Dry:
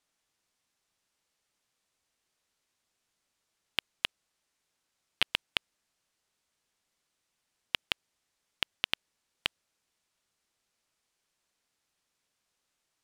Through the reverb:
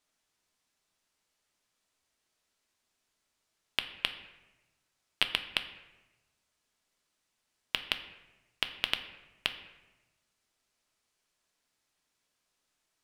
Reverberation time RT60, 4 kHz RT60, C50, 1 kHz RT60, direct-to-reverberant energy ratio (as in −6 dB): 1.1 s, 0.70 s, 11.0 dB, 1.0 s, 7.0 dB